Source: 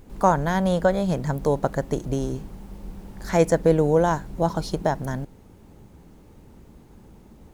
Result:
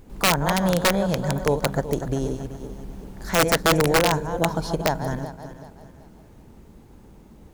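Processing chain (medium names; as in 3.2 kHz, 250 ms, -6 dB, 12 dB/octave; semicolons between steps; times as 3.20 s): backward echo that repeats 191 ms, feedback 58%, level -9.5 dB; integer overflow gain 10.5 dB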